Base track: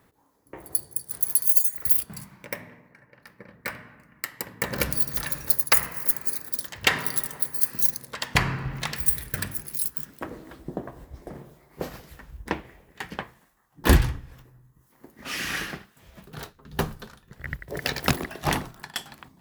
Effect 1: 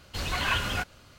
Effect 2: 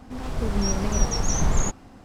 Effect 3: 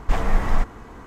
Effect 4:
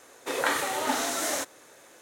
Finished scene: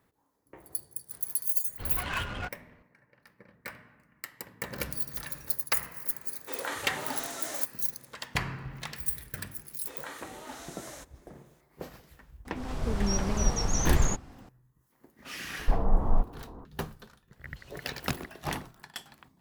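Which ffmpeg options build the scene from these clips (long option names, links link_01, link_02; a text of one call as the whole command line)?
ffmpeg -i bed.wav -i cue0.wav -i cue1.wav -i cue2.wav -i cue3.wav -filter_complex "[1:a]asplit=2[link_01][link_02];[4:a]asplit=2[link_03][link_04];[0:a]volume=-9dB[link_05];[link_01]adynamicsmooth=sensitivity=2.5:basefreq=1400[link_06];[3:a]lowpass=frequency=1000:width=0.5412,lowpass=frequency=1000:width=1.3066[link_07];[link_02]acompressor=threshold=-33dB:ratio=6:attack=3.2:release=140:knee=1:detection=peak[link_08];[link_06]atrim=end=1.18,asetpts=PTS-STARTPTS,volume=-5dB,afade=type=in:duration=0.004:curve=hsin,afade=type=out:start_time=1.176:duration=0.004:curve=hsin,adelay=1650[link_09];[link_03]atrim=end=2.01,asetpts=PTS-STARTPTS,volume=-9.5dB,afade=type=in:duration=0.004:curve=hsin,afade=type=out:start_time=2.006:duration=0.004:curve=hsin,adelay=6210[link_10];[link_04]atrim=end=2.01,asetpts=PTS-STARTPTS,volume=-16.5dB,afade=type=in:duration=0.004:curve=hsin,afade=type=out:start_time=2.006:duration=0.004:curve=hsin,adelay=9600[link_11];[2:a]atrim=end=2.04,asetpts=PTS-STARTPTS,volume=-4dB,afade=type=in:duration=0.004:curve=hsin,afade=type=out:start_time=2.036:duration=0.004:curve=hsin,adelay=12450[link_12];[link_07]atrim=end=1.06,asetpts=PTS-STARTPTS,volume=-4dB,afade=type=in:duration=0.004:curve=hsin,afade=type=out:start_time=1.056:duration=0.004:curve=hsin,adelay=15590[link_13];[link_08]atrim=end=1.18,asetpts=PTS-STARTPTS,volume=-17.5dB,afade=type=in:duration=0.004:curve=hsin,afade=type=out:start_time=1.176:duration=0.004:curve=hsin,adelay=17420[link_14];[link_05][link_09][link_10][link_11][link_12][link_13][link_14]amix=inputs=7:normalize=0" out.wav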